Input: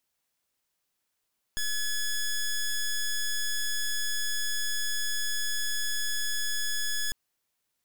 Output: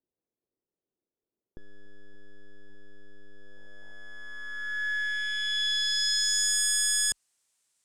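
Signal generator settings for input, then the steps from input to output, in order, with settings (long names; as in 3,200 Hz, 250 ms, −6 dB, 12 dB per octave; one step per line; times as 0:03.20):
pulse wave 1,700 Hz, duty 11% −28.5 dBFS 5.55 s
spectral tilt +1.5 dB per octave
low-pass filter sweep 390 Hz → 8,400 Hz, 0:03.30–0:06.62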